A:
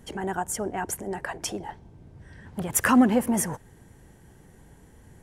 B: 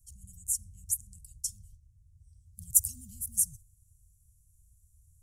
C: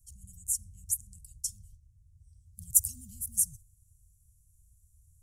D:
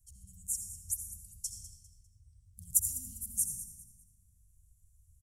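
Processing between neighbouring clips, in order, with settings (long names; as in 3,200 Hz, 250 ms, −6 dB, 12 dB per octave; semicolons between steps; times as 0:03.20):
noise gate −40 dBFS, range −7 dB; inverse Chebyshev band-stop filter 420–1,600 Hz, stop band 80 dB; parametric band 12,000 Hz +3.5 dB 1.6 octaves
no processing that can be heard
repeating echo 200 ms, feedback 32%, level −14 dB; convolution reverb RT60 1.6 s, pre-delay 63 ms, DRR 3.5 dB; level −4.5 dB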